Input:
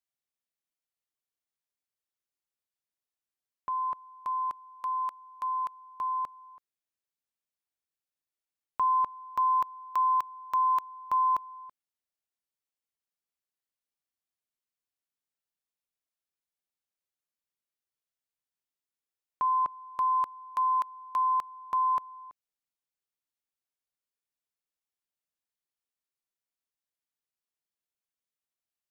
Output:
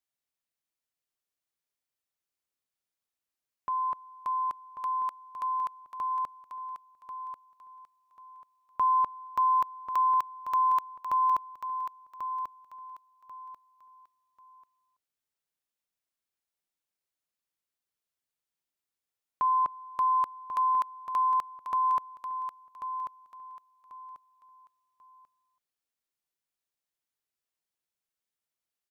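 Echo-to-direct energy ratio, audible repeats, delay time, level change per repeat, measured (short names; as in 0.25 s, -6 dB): -8.5 dB, 3, 1.09 s, -11.5 dB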